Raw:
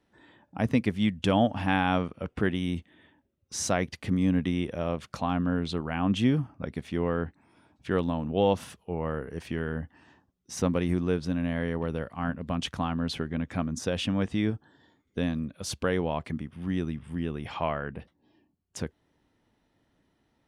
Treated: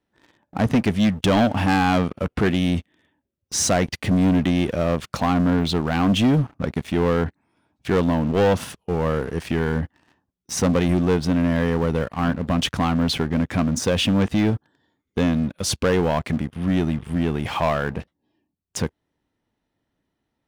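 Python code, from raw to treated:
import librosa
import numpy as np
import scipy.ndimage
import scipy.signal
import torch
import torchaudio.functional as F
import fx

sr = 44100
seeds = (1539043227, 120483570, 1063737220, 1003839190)

y = fx.leveller(x, sr, passes=3)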